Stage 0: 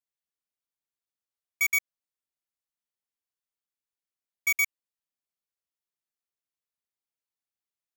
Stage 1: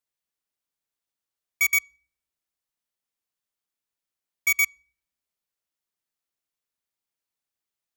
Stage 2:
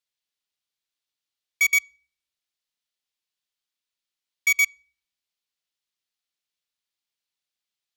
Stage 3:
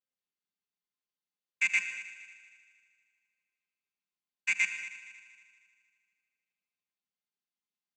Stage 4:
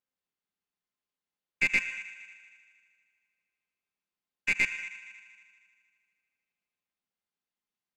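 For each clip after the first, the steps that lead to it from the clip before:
on a send at −23 dB: Chebyshev low-pass filter 5,900 Hz + convolution reverb RT60 0.50 s, pre-delay 3 ms; on the sum: level +4 dB
parametric band 3,700 Hz +12 dB 1.9 octaves; level −5.5 dB
channel vocoder with a chord as carrier minor triad, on F3; echo machine with several playback heads 78 ms, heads first and third, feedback 57%, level −15.5 dB; reverb whose tail is shaped and stops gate 200 ms rising, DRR 10 dB; level −6.5 dB
stylus tracing distortion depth 0.027 ms; high-shelf EQ 4,300 Hz −10 dB; level +4 dB

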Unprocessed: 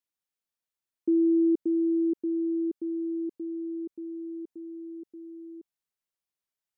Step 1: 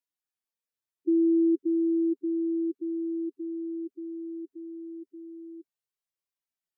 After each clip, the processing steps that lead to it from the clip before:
harmonic-percussive split with one part muted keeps harmonic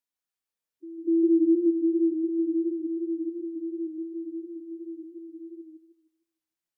echo ahead of the sound 247 ms −18 dB
feedback echo with a swinging delay time 154 ms, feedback 31%, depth 81 cents, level −4 dB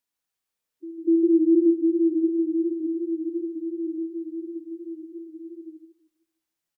single-tap delay 80 ms −9 dB
level +4.5 dB

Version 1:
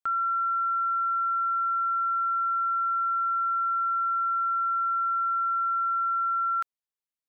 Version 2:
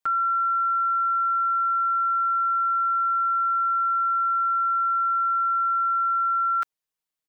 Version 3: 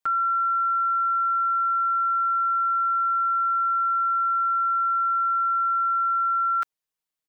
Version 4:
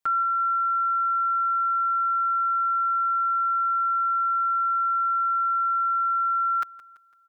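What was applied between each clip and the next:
comb filter 6.4 ms, depth 93%; level +2.5 dB
no processing that can be heard
repeating echo 168 ms, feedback 47%, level −18 dB

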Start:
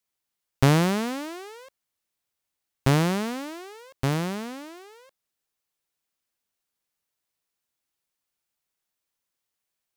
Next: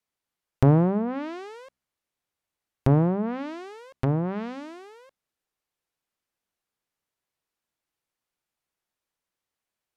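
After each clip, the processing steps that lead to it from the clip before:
treble cut that deepens with the level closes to 800 Hz, closed at −23 dBFS
high-shelf EQ 3,100 Hz −8.5 dB
hum removal 64.38 Hz, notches 4
level +2 dB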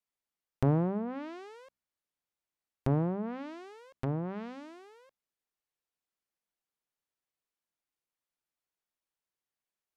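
parametric band 95 Hz −4 dB 0.77 octaves
level −8 dB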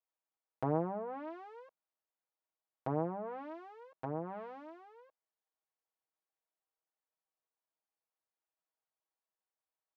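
resonant band-pass 770 Hz, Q 1.2
comb filter 6.3 ms, depth 72%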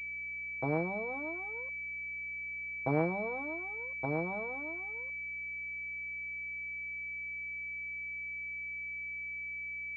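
speech leveller within 4 dB 2 s
mains hum 60 Hz, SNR 22 dB
switching amplifier with a slow clock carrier 2,300 Hz
level +2 dB

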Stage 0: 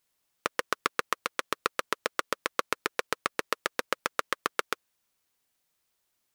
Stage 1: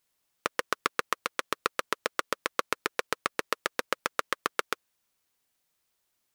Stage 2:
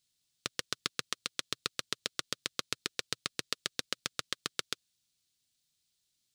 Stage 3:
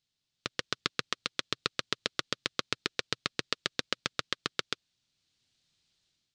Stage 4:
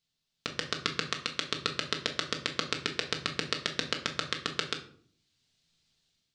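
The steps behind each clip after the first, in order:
no processing that can be heard
graphic EQ with 10 bands 125 Hz +8 dB, 500 Hz −7 dB, 1,000 Hz −12 dB, 2,000 Hz −4 dB, 4,000 Hz +9 dB, 8,000 Hz +6 dB, 16,000 Hz −6 dB; level −4 dB
automatic gain control gain up to 9.5 dB; Gaussian smoothing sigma 1.5 samples
convolution reverb RT60 0.55 s, pre-delay 4 ms, DRR 3 dB

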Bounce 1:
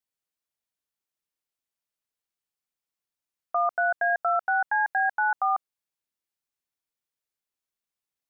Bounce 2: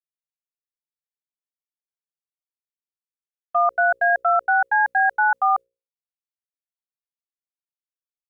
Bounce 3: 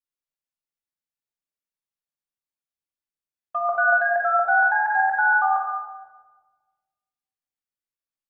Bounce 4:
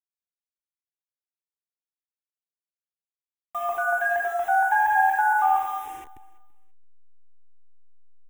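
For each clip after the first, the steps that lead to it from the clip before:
downward expander −27 dBFS; mains-hum notches 60/120/180/240/300/360/420/480/540 Hz; level +6 dB
rectangular room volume 1,100 cubic metres, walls mixed, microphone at 2.4 metres; level −5 dB
hold until the input has moved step −38.5 dBFS; phaser with its sweep stopped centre 910 Hz, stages 8; repeating echo 335 ms, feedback 29%, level −23 dB; level +3 dB

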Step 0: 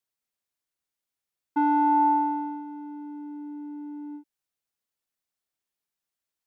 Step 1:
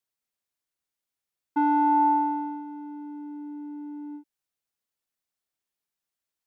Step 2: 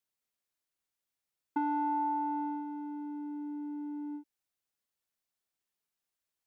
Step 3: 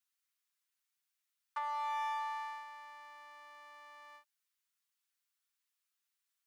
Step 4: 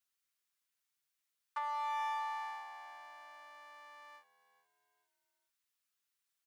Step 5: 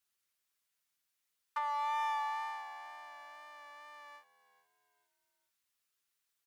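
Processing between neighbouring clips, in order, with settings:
no processing that can be heard
downward compressor 6 to 1, threshold −28 dBFS, peak gain reduction 9.5 dB; level −1.5 dB
lower of the sound and its delayed copy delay 7.8 ms; high-pass filter 1,100 Hz 24 dB per octave; level +3.5 dB
echo with shifted repeats 427 ms, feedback 37%, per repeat −80 Hz, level −18 dB
tape wow and flutter 18 cents; level +2.5 dB

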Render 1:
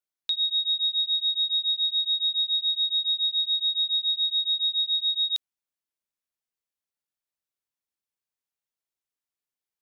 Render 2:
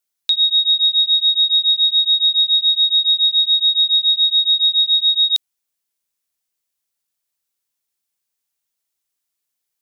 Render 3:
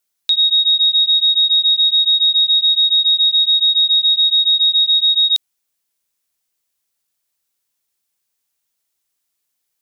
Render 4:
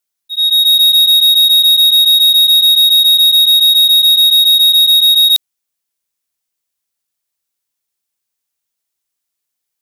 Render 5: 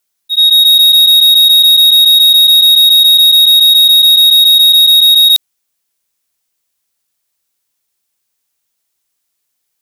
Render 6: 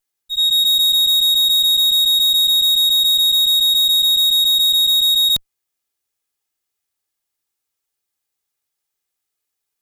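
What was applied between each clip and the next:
high-shelf EQ 3,300 Hz +9.5 dB; level +5 dB
brickwall limiter −13.5 dBFS, peak gain reduction 4.5 dB; level +4.5 dB
volume swells 490 ms; leveller curve on the samples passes 3; level +3 dB
brickwall limiter −11.5 dBFS, peak gain reduction 5.5 dB; level +7.5 dB
lower of the sound and its delayed copy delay 2.4 ms; level −8.5 dB

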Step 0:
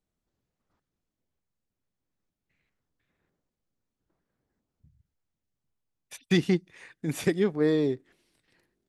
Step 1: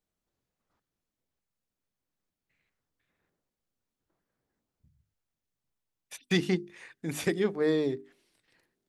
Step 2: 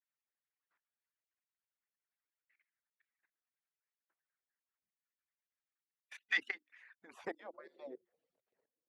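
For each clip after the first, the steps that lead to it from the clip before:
low-shelf EQ 330 Hz −4.5 dB; mains-hum notches 50/100/150/200/250/300/350/400 Hz
harmonic-percussive split with one part muted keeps percussive; output level in coarse steps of 16 dB; band-pass filter sweep 1,800 Hz → 490 Hz, 0:06.81–0:07.65; level +6 dB

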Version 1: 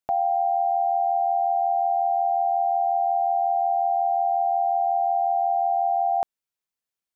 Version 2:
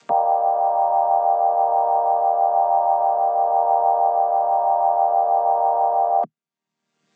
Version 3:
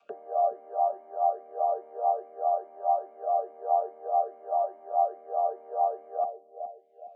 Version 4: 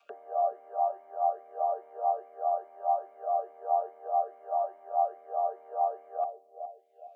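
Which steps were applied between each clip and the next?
channel vocoder with a chord as carrier major triad, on D#3; upward compression, threshold −35 dBFS; level +5 dB
on a send: bucket-brigade delay 415 ms, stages 2,048, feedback 44%, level −7.5 dB; on the sum: formant filter swept between two vowels a-i 2.4 Hz
high-pass filter 1,300 Hz 6 dB per octave; level +4 dB

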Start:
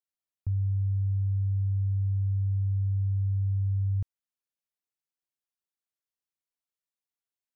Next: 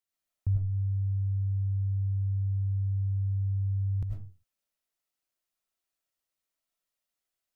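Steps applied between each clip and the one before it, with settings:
convolution reverb RT60 0.35 s, pre-delay 62 ms, DRR −2 dB
level +2 dB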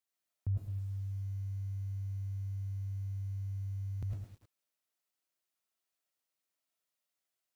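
high-pass filter 150 Hz 6 dB per octave
feedback echo at a low word length 107 ms, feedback 35%, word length 10 bits, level −7 dB
level −1 dB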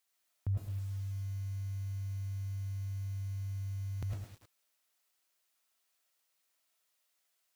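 low-shelf EQ 430 Hz −10 dB
level +9.5 dB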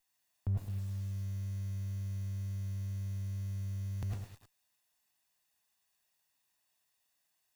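lower of the sound and its delayed copy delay 1.1 ms
level +1 dB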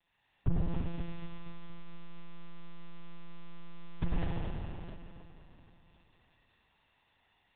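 spring reverb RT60 3 s, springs 47 ms, chirp 70 ms, DRR −8 dB
one-pitch LPC vocoder at 8 kHz 170 Hz
level +6 dB

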